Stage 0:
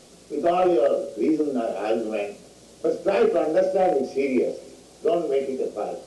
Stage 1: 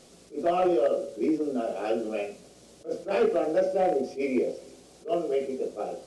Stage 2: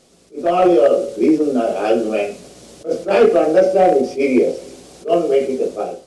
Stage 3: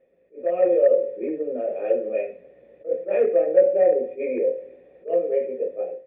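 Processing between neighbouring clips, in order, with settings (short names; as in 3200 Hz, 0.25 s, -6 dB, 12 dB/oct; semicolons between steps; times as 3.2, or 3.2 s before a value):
attack slew limiter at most 260 dB/s; gain -4 dB
AGC gain up to 12.5 dB
vocal tract filter e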